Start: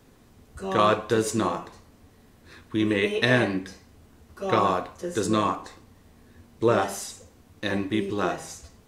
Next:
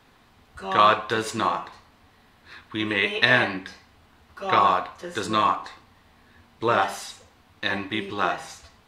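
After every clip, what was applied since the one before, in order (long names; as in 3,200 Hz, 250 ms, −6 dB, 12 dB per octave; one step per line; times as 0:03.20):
flat-topped bell 1,800 Hz +10.5 dB 3 octaves
level −5 dB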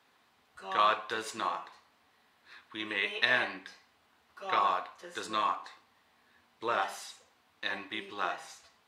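high-pass filter 540 Hz 6 dB per octave
level −8 dB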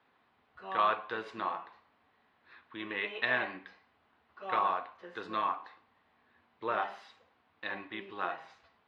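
high-frequency loss of the air 340 metres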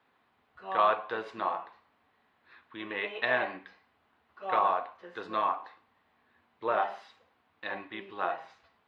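dynamic equaliser 650 Hz, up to +7 dB, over −48 dBFS, Q 1.2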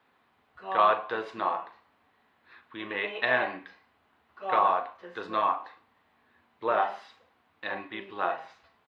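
double-tracking delay 39 ms −13.5 dB
level +2.5 dB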